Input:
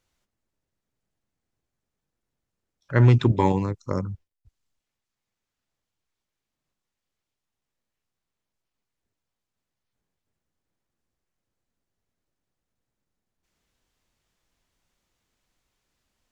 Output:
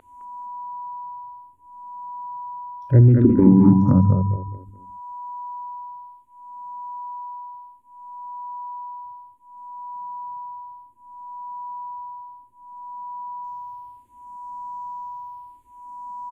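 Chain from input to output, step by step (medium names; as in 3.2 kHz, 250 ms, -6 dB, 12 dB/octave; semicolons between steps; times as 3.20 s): low-pass that closes with the level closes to 1.2 kHz, closed at -23.5 dBFS; graphic EQ 125/250/500/1000/2000/4000 Hz +6/+8/-5/-11/-7/-12 dB; in parallel at +2.5 dB: compression, threshold -22 dBFS, peak gain reduction 15.5 dB; on the sum: whistle 980 Hz -36 dBFS; on a send: feedback delay 211 ms, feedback 30%, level -5.5 dB; on the sum: loudness maximiser +5.5 dB; barber-pole phaser -0.64 Hz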